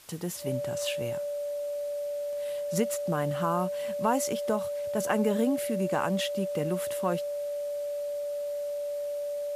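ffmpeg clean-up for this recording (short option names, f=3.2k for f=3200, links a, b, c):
-af "adeclick=t=4,bandreject=f=580:w=30,afwtdn=0.0022"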